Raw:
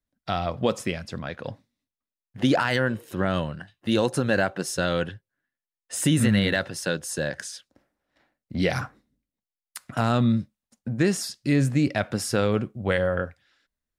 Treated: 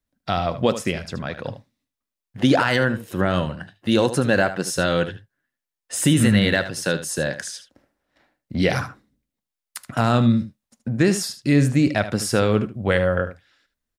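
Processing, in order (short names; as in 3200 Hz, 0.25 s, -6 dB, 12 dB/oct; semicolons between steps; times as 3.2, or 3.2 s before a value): echo 76 ms -12.5 dB; gain +4 dB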